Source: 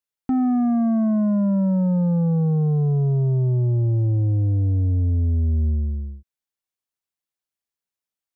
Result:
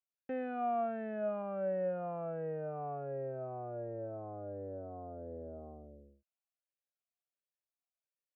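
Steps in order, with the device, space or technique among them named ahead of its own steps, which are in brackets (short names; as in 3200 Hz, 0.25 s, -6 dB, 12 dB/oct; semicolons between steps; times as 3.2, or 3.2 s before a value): 1.42–1.83 notch 640 Hz, Q 12; talk box (tube stage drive 23 dB, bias 0.7; vowel sweep a-e 1.4 Hz); gain +4.5 dB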